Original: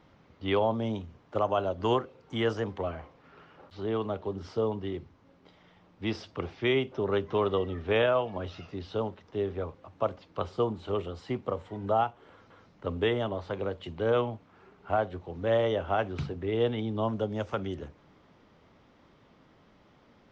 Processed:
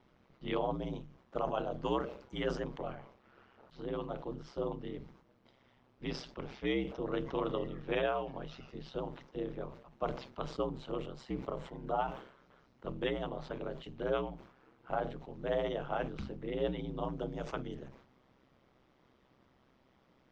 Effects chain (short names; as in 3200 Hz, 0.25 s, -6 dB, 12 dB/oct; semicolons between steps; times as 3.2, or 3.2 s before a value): ring modulator 65 Hz; sustainer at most 96 dB/s; gain -5 dB